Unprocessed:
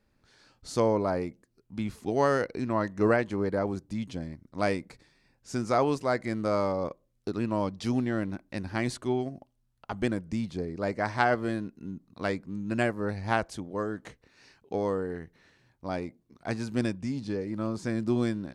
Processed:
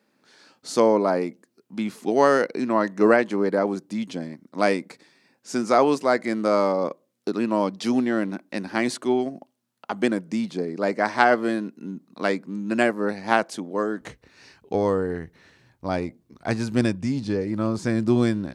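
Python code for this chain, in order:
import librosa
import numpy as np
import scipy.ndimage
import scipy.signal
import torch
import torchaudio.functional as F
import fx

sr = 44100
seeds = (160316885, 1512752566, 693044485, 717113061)

y = fx.highpass(x, sr, hz=fx.steps((0.0, 190.0), (14.01, 43.0)), slope=24)
y = F.gain(torch.from_numpy(y), 7.0).numpy()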